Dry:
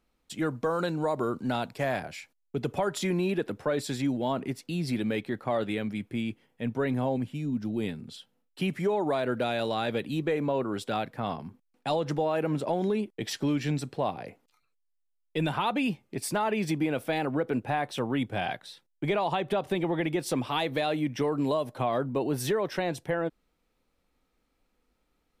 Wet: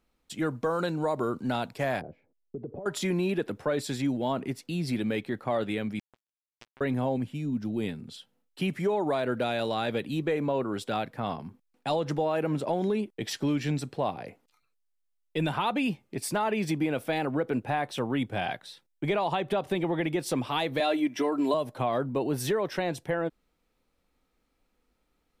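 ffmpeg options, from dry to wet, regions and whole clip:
-filter_complex "[0:a]asettb=1/sr,asplit=3[a][b][c];[a]atrim=end=2.014[d];[b]atrim=start=2.01:end=2.86,asetpts=PTS-STARTPTS,afade=t=in:d=0.004:c=qsin,afade=t=out:st=0.846:d=0.004:c=qsin,acompressor=threshold=-35dB:ratio=12:attack=3.2:release=140:knee=1:detection=peak,lowpass=f=470:t=q:w=1.7[e];[c]atrim=start=2.856[f];[d][e]acrossfade=d=0.004:c1=hsin:c2=qsin[g];[g][f]acrossfade=d=0.004:c1=qsin:c2=hsin,asettb=1/sr,asplit=3[h][i][j];[h]atrim=end=5.994[k];[i]atrim=start=5.99:end=6.81,asetpts=PTS-STARTPTS,afade=t=in:d=0.004:c=qsin,afade=t=out:st=0.816:d=0.004:c=qsin,equalizer=f=170:w=4:g=4,acompressor=threshold=-31dB:ratio=12:attack=3.2:release=140:knee=1:detection=peak,acrusher=bits=3:mix=0:aa=0.5[l];[j]atrim=start=6.806[m];[k][l]acrossfade=d=0.004:c1=hsin:c2=qsin[n];[n][m]acrossfade=d=0.004:c1=qsin:c2=hsin,asettb=1/sr,asplit=3[o][p][q];[o]atrim=end=20.804[r];[p]atrim=start=20.8:end=21.54,asetpts=PTS-STARTPTS,afade=t=in:d=0.004:c=qsin,afade=t=out:st=0.736:d=0.004:c=qsin,highpass=250,aecho=1:1:3:0.77,atrim=end_sample=32634[s];[q]atrim=start=21.536[t];[r][s]acrossfade=d=0.004:c1=hsin:c2=qsin[u];[u][t]acrossfade=d=0.004:c1=qsin:c2=hsin"

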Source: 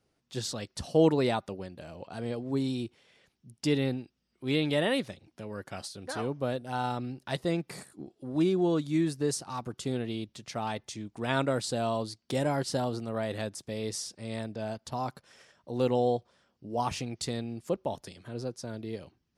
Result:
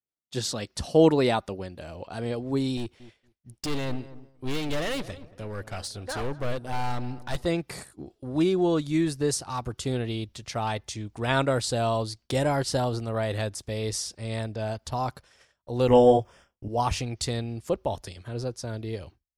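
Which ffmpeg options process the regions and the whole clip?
-filter_complex "[0:a]asettb=1/sr,asplit=3[a][b][c];[a]atrim=end=2.774[d];[b]atrim=start=2.77:end=7.46,asetpts=PTS-STARTPTS,afade=t=in:d=0.004:c=qsin,afade=t=out:st=4.686:d=0.004:c=qsin,asoftclip=type=hard:threshold=-32dB,asplit=2[e][f];[f]adelay=229,lowpass=f=1.2k:p=1,volume=-15dB,asplit=2[g][h];[h]adelay=229,lowpass=f=1.2k:p=1,volume=0.4,asplit=2[i][j];[j]adelay=229,lowpass=f=1.2k:p=1,volume=0.4,asplit=2[k][l];[l]adelay=229,lowpass=f=1.2k:p=1,volume=0.4[m];[e][g][i][k][m]amix=inputs=5:normalize=0,atrim=end_sample=206829[n];[c]atrim=start=7.456[o];[d][n]acrossfade=d=0.004:c1=hsin:c2=qsin[p];[p][o]acrossfade=d=0.004:c1=qsin:c2=hsin,asettb=1/sr,asplit=3[q][r][s];[q]atrim=end=15.884[t];[r]atrim=start=15.88:end=16.68,asetpts=PTS-STARTPTS,afade=t=in:d=0.004:c=qsin,afade=t=out:st=0.796:d=0.004:c=qsin,asplit=2[u][v];[v]adelay=28,volume=-3dB[w];[u][w]amix=inputs=2:normalize=0,atrim=end_sample=35280,acontrast=20,asuperstop=centerf=4100:order=4:qfactor=2.5[x];[s]atrim=start=16.676[y];[t][x]acrossfade=d=0.004:c1=hsin:c2=qsin[z];[z][y]acrossfade=d=0.004:c1=qsin:c2=hsin,agate=range=-33dB:threshold=-50dB:ratio=3:detection=peak,asubboost=boost=7.5:cutoff=65,volume=5dB"

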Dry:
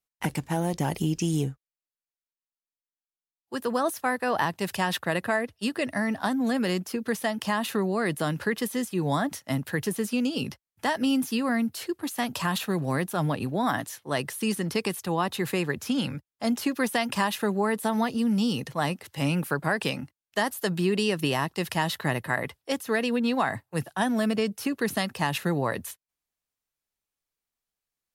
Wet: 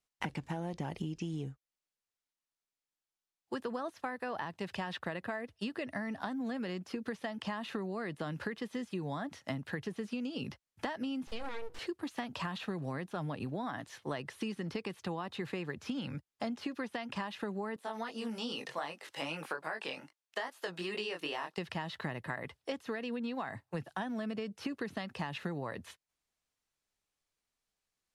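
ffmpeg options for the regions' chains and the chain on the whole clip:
-filter_complex "[0:a]asettb=1/sr,asplit=3[a][b][c];[a]atrim=end=11.274[d];[b]atrim=start=11.27:end=11.79,asetpts=PTS-STARTPTS,afade=t=in:d=0.004:c=qsin,afade=t=out:st=0.516:d=0.004:c=qsin,bandreject=f=60:t=h:w=6,bandreject=f=120:t=h:w=6,bandreject=f=180:t=h:w=6,bandreject=f=240:t=h:w=6,bandreject=f=300:t=h:w=6,bandreject=f=360:t=h:w=6,bandreject=f=420:t=h:w=6,bandreject=f=480:t=h:w=6,aeval=exprs='abs(val(0))':c=same[e];[c]atrim=start=11.786[f];[d][e]acrossfade=d=0.004:c1=hsin:c2=qsin[g];[g][f]acrossfade=d=0.004:c1=qsin:c2=hsin,asettb=1/sr,asplit=3[h][i][j];[h]atrim=end=17.764[k];[i]atrim=start=17.76:end=21.58,asetpts=PTS-STARTPTS,afade=t=in:d=0.004:c=qsin,afade=t=out:st=3.816:d=0.004:c=qsin,highpass=450,flanger=delay=18:depth=5:speed=2.5[l];[j]atrim=start=21.576[m];[k][l]acrossfade=d=0.004:c1=hsin:c2=qsin[n];[n][m]acrossfade=d=0.004:c1=qsin:c2=hsin,acrossover=split=4500[o][p];[p]acompressor=threshold=-52dB:ratio=4:attack=1:release=60[q];[o][q]amix=inputs=2:normalize=0,lowpass=8.8k,acompressor=threshold=-37dB:ratio=12,volume=2.5dB"

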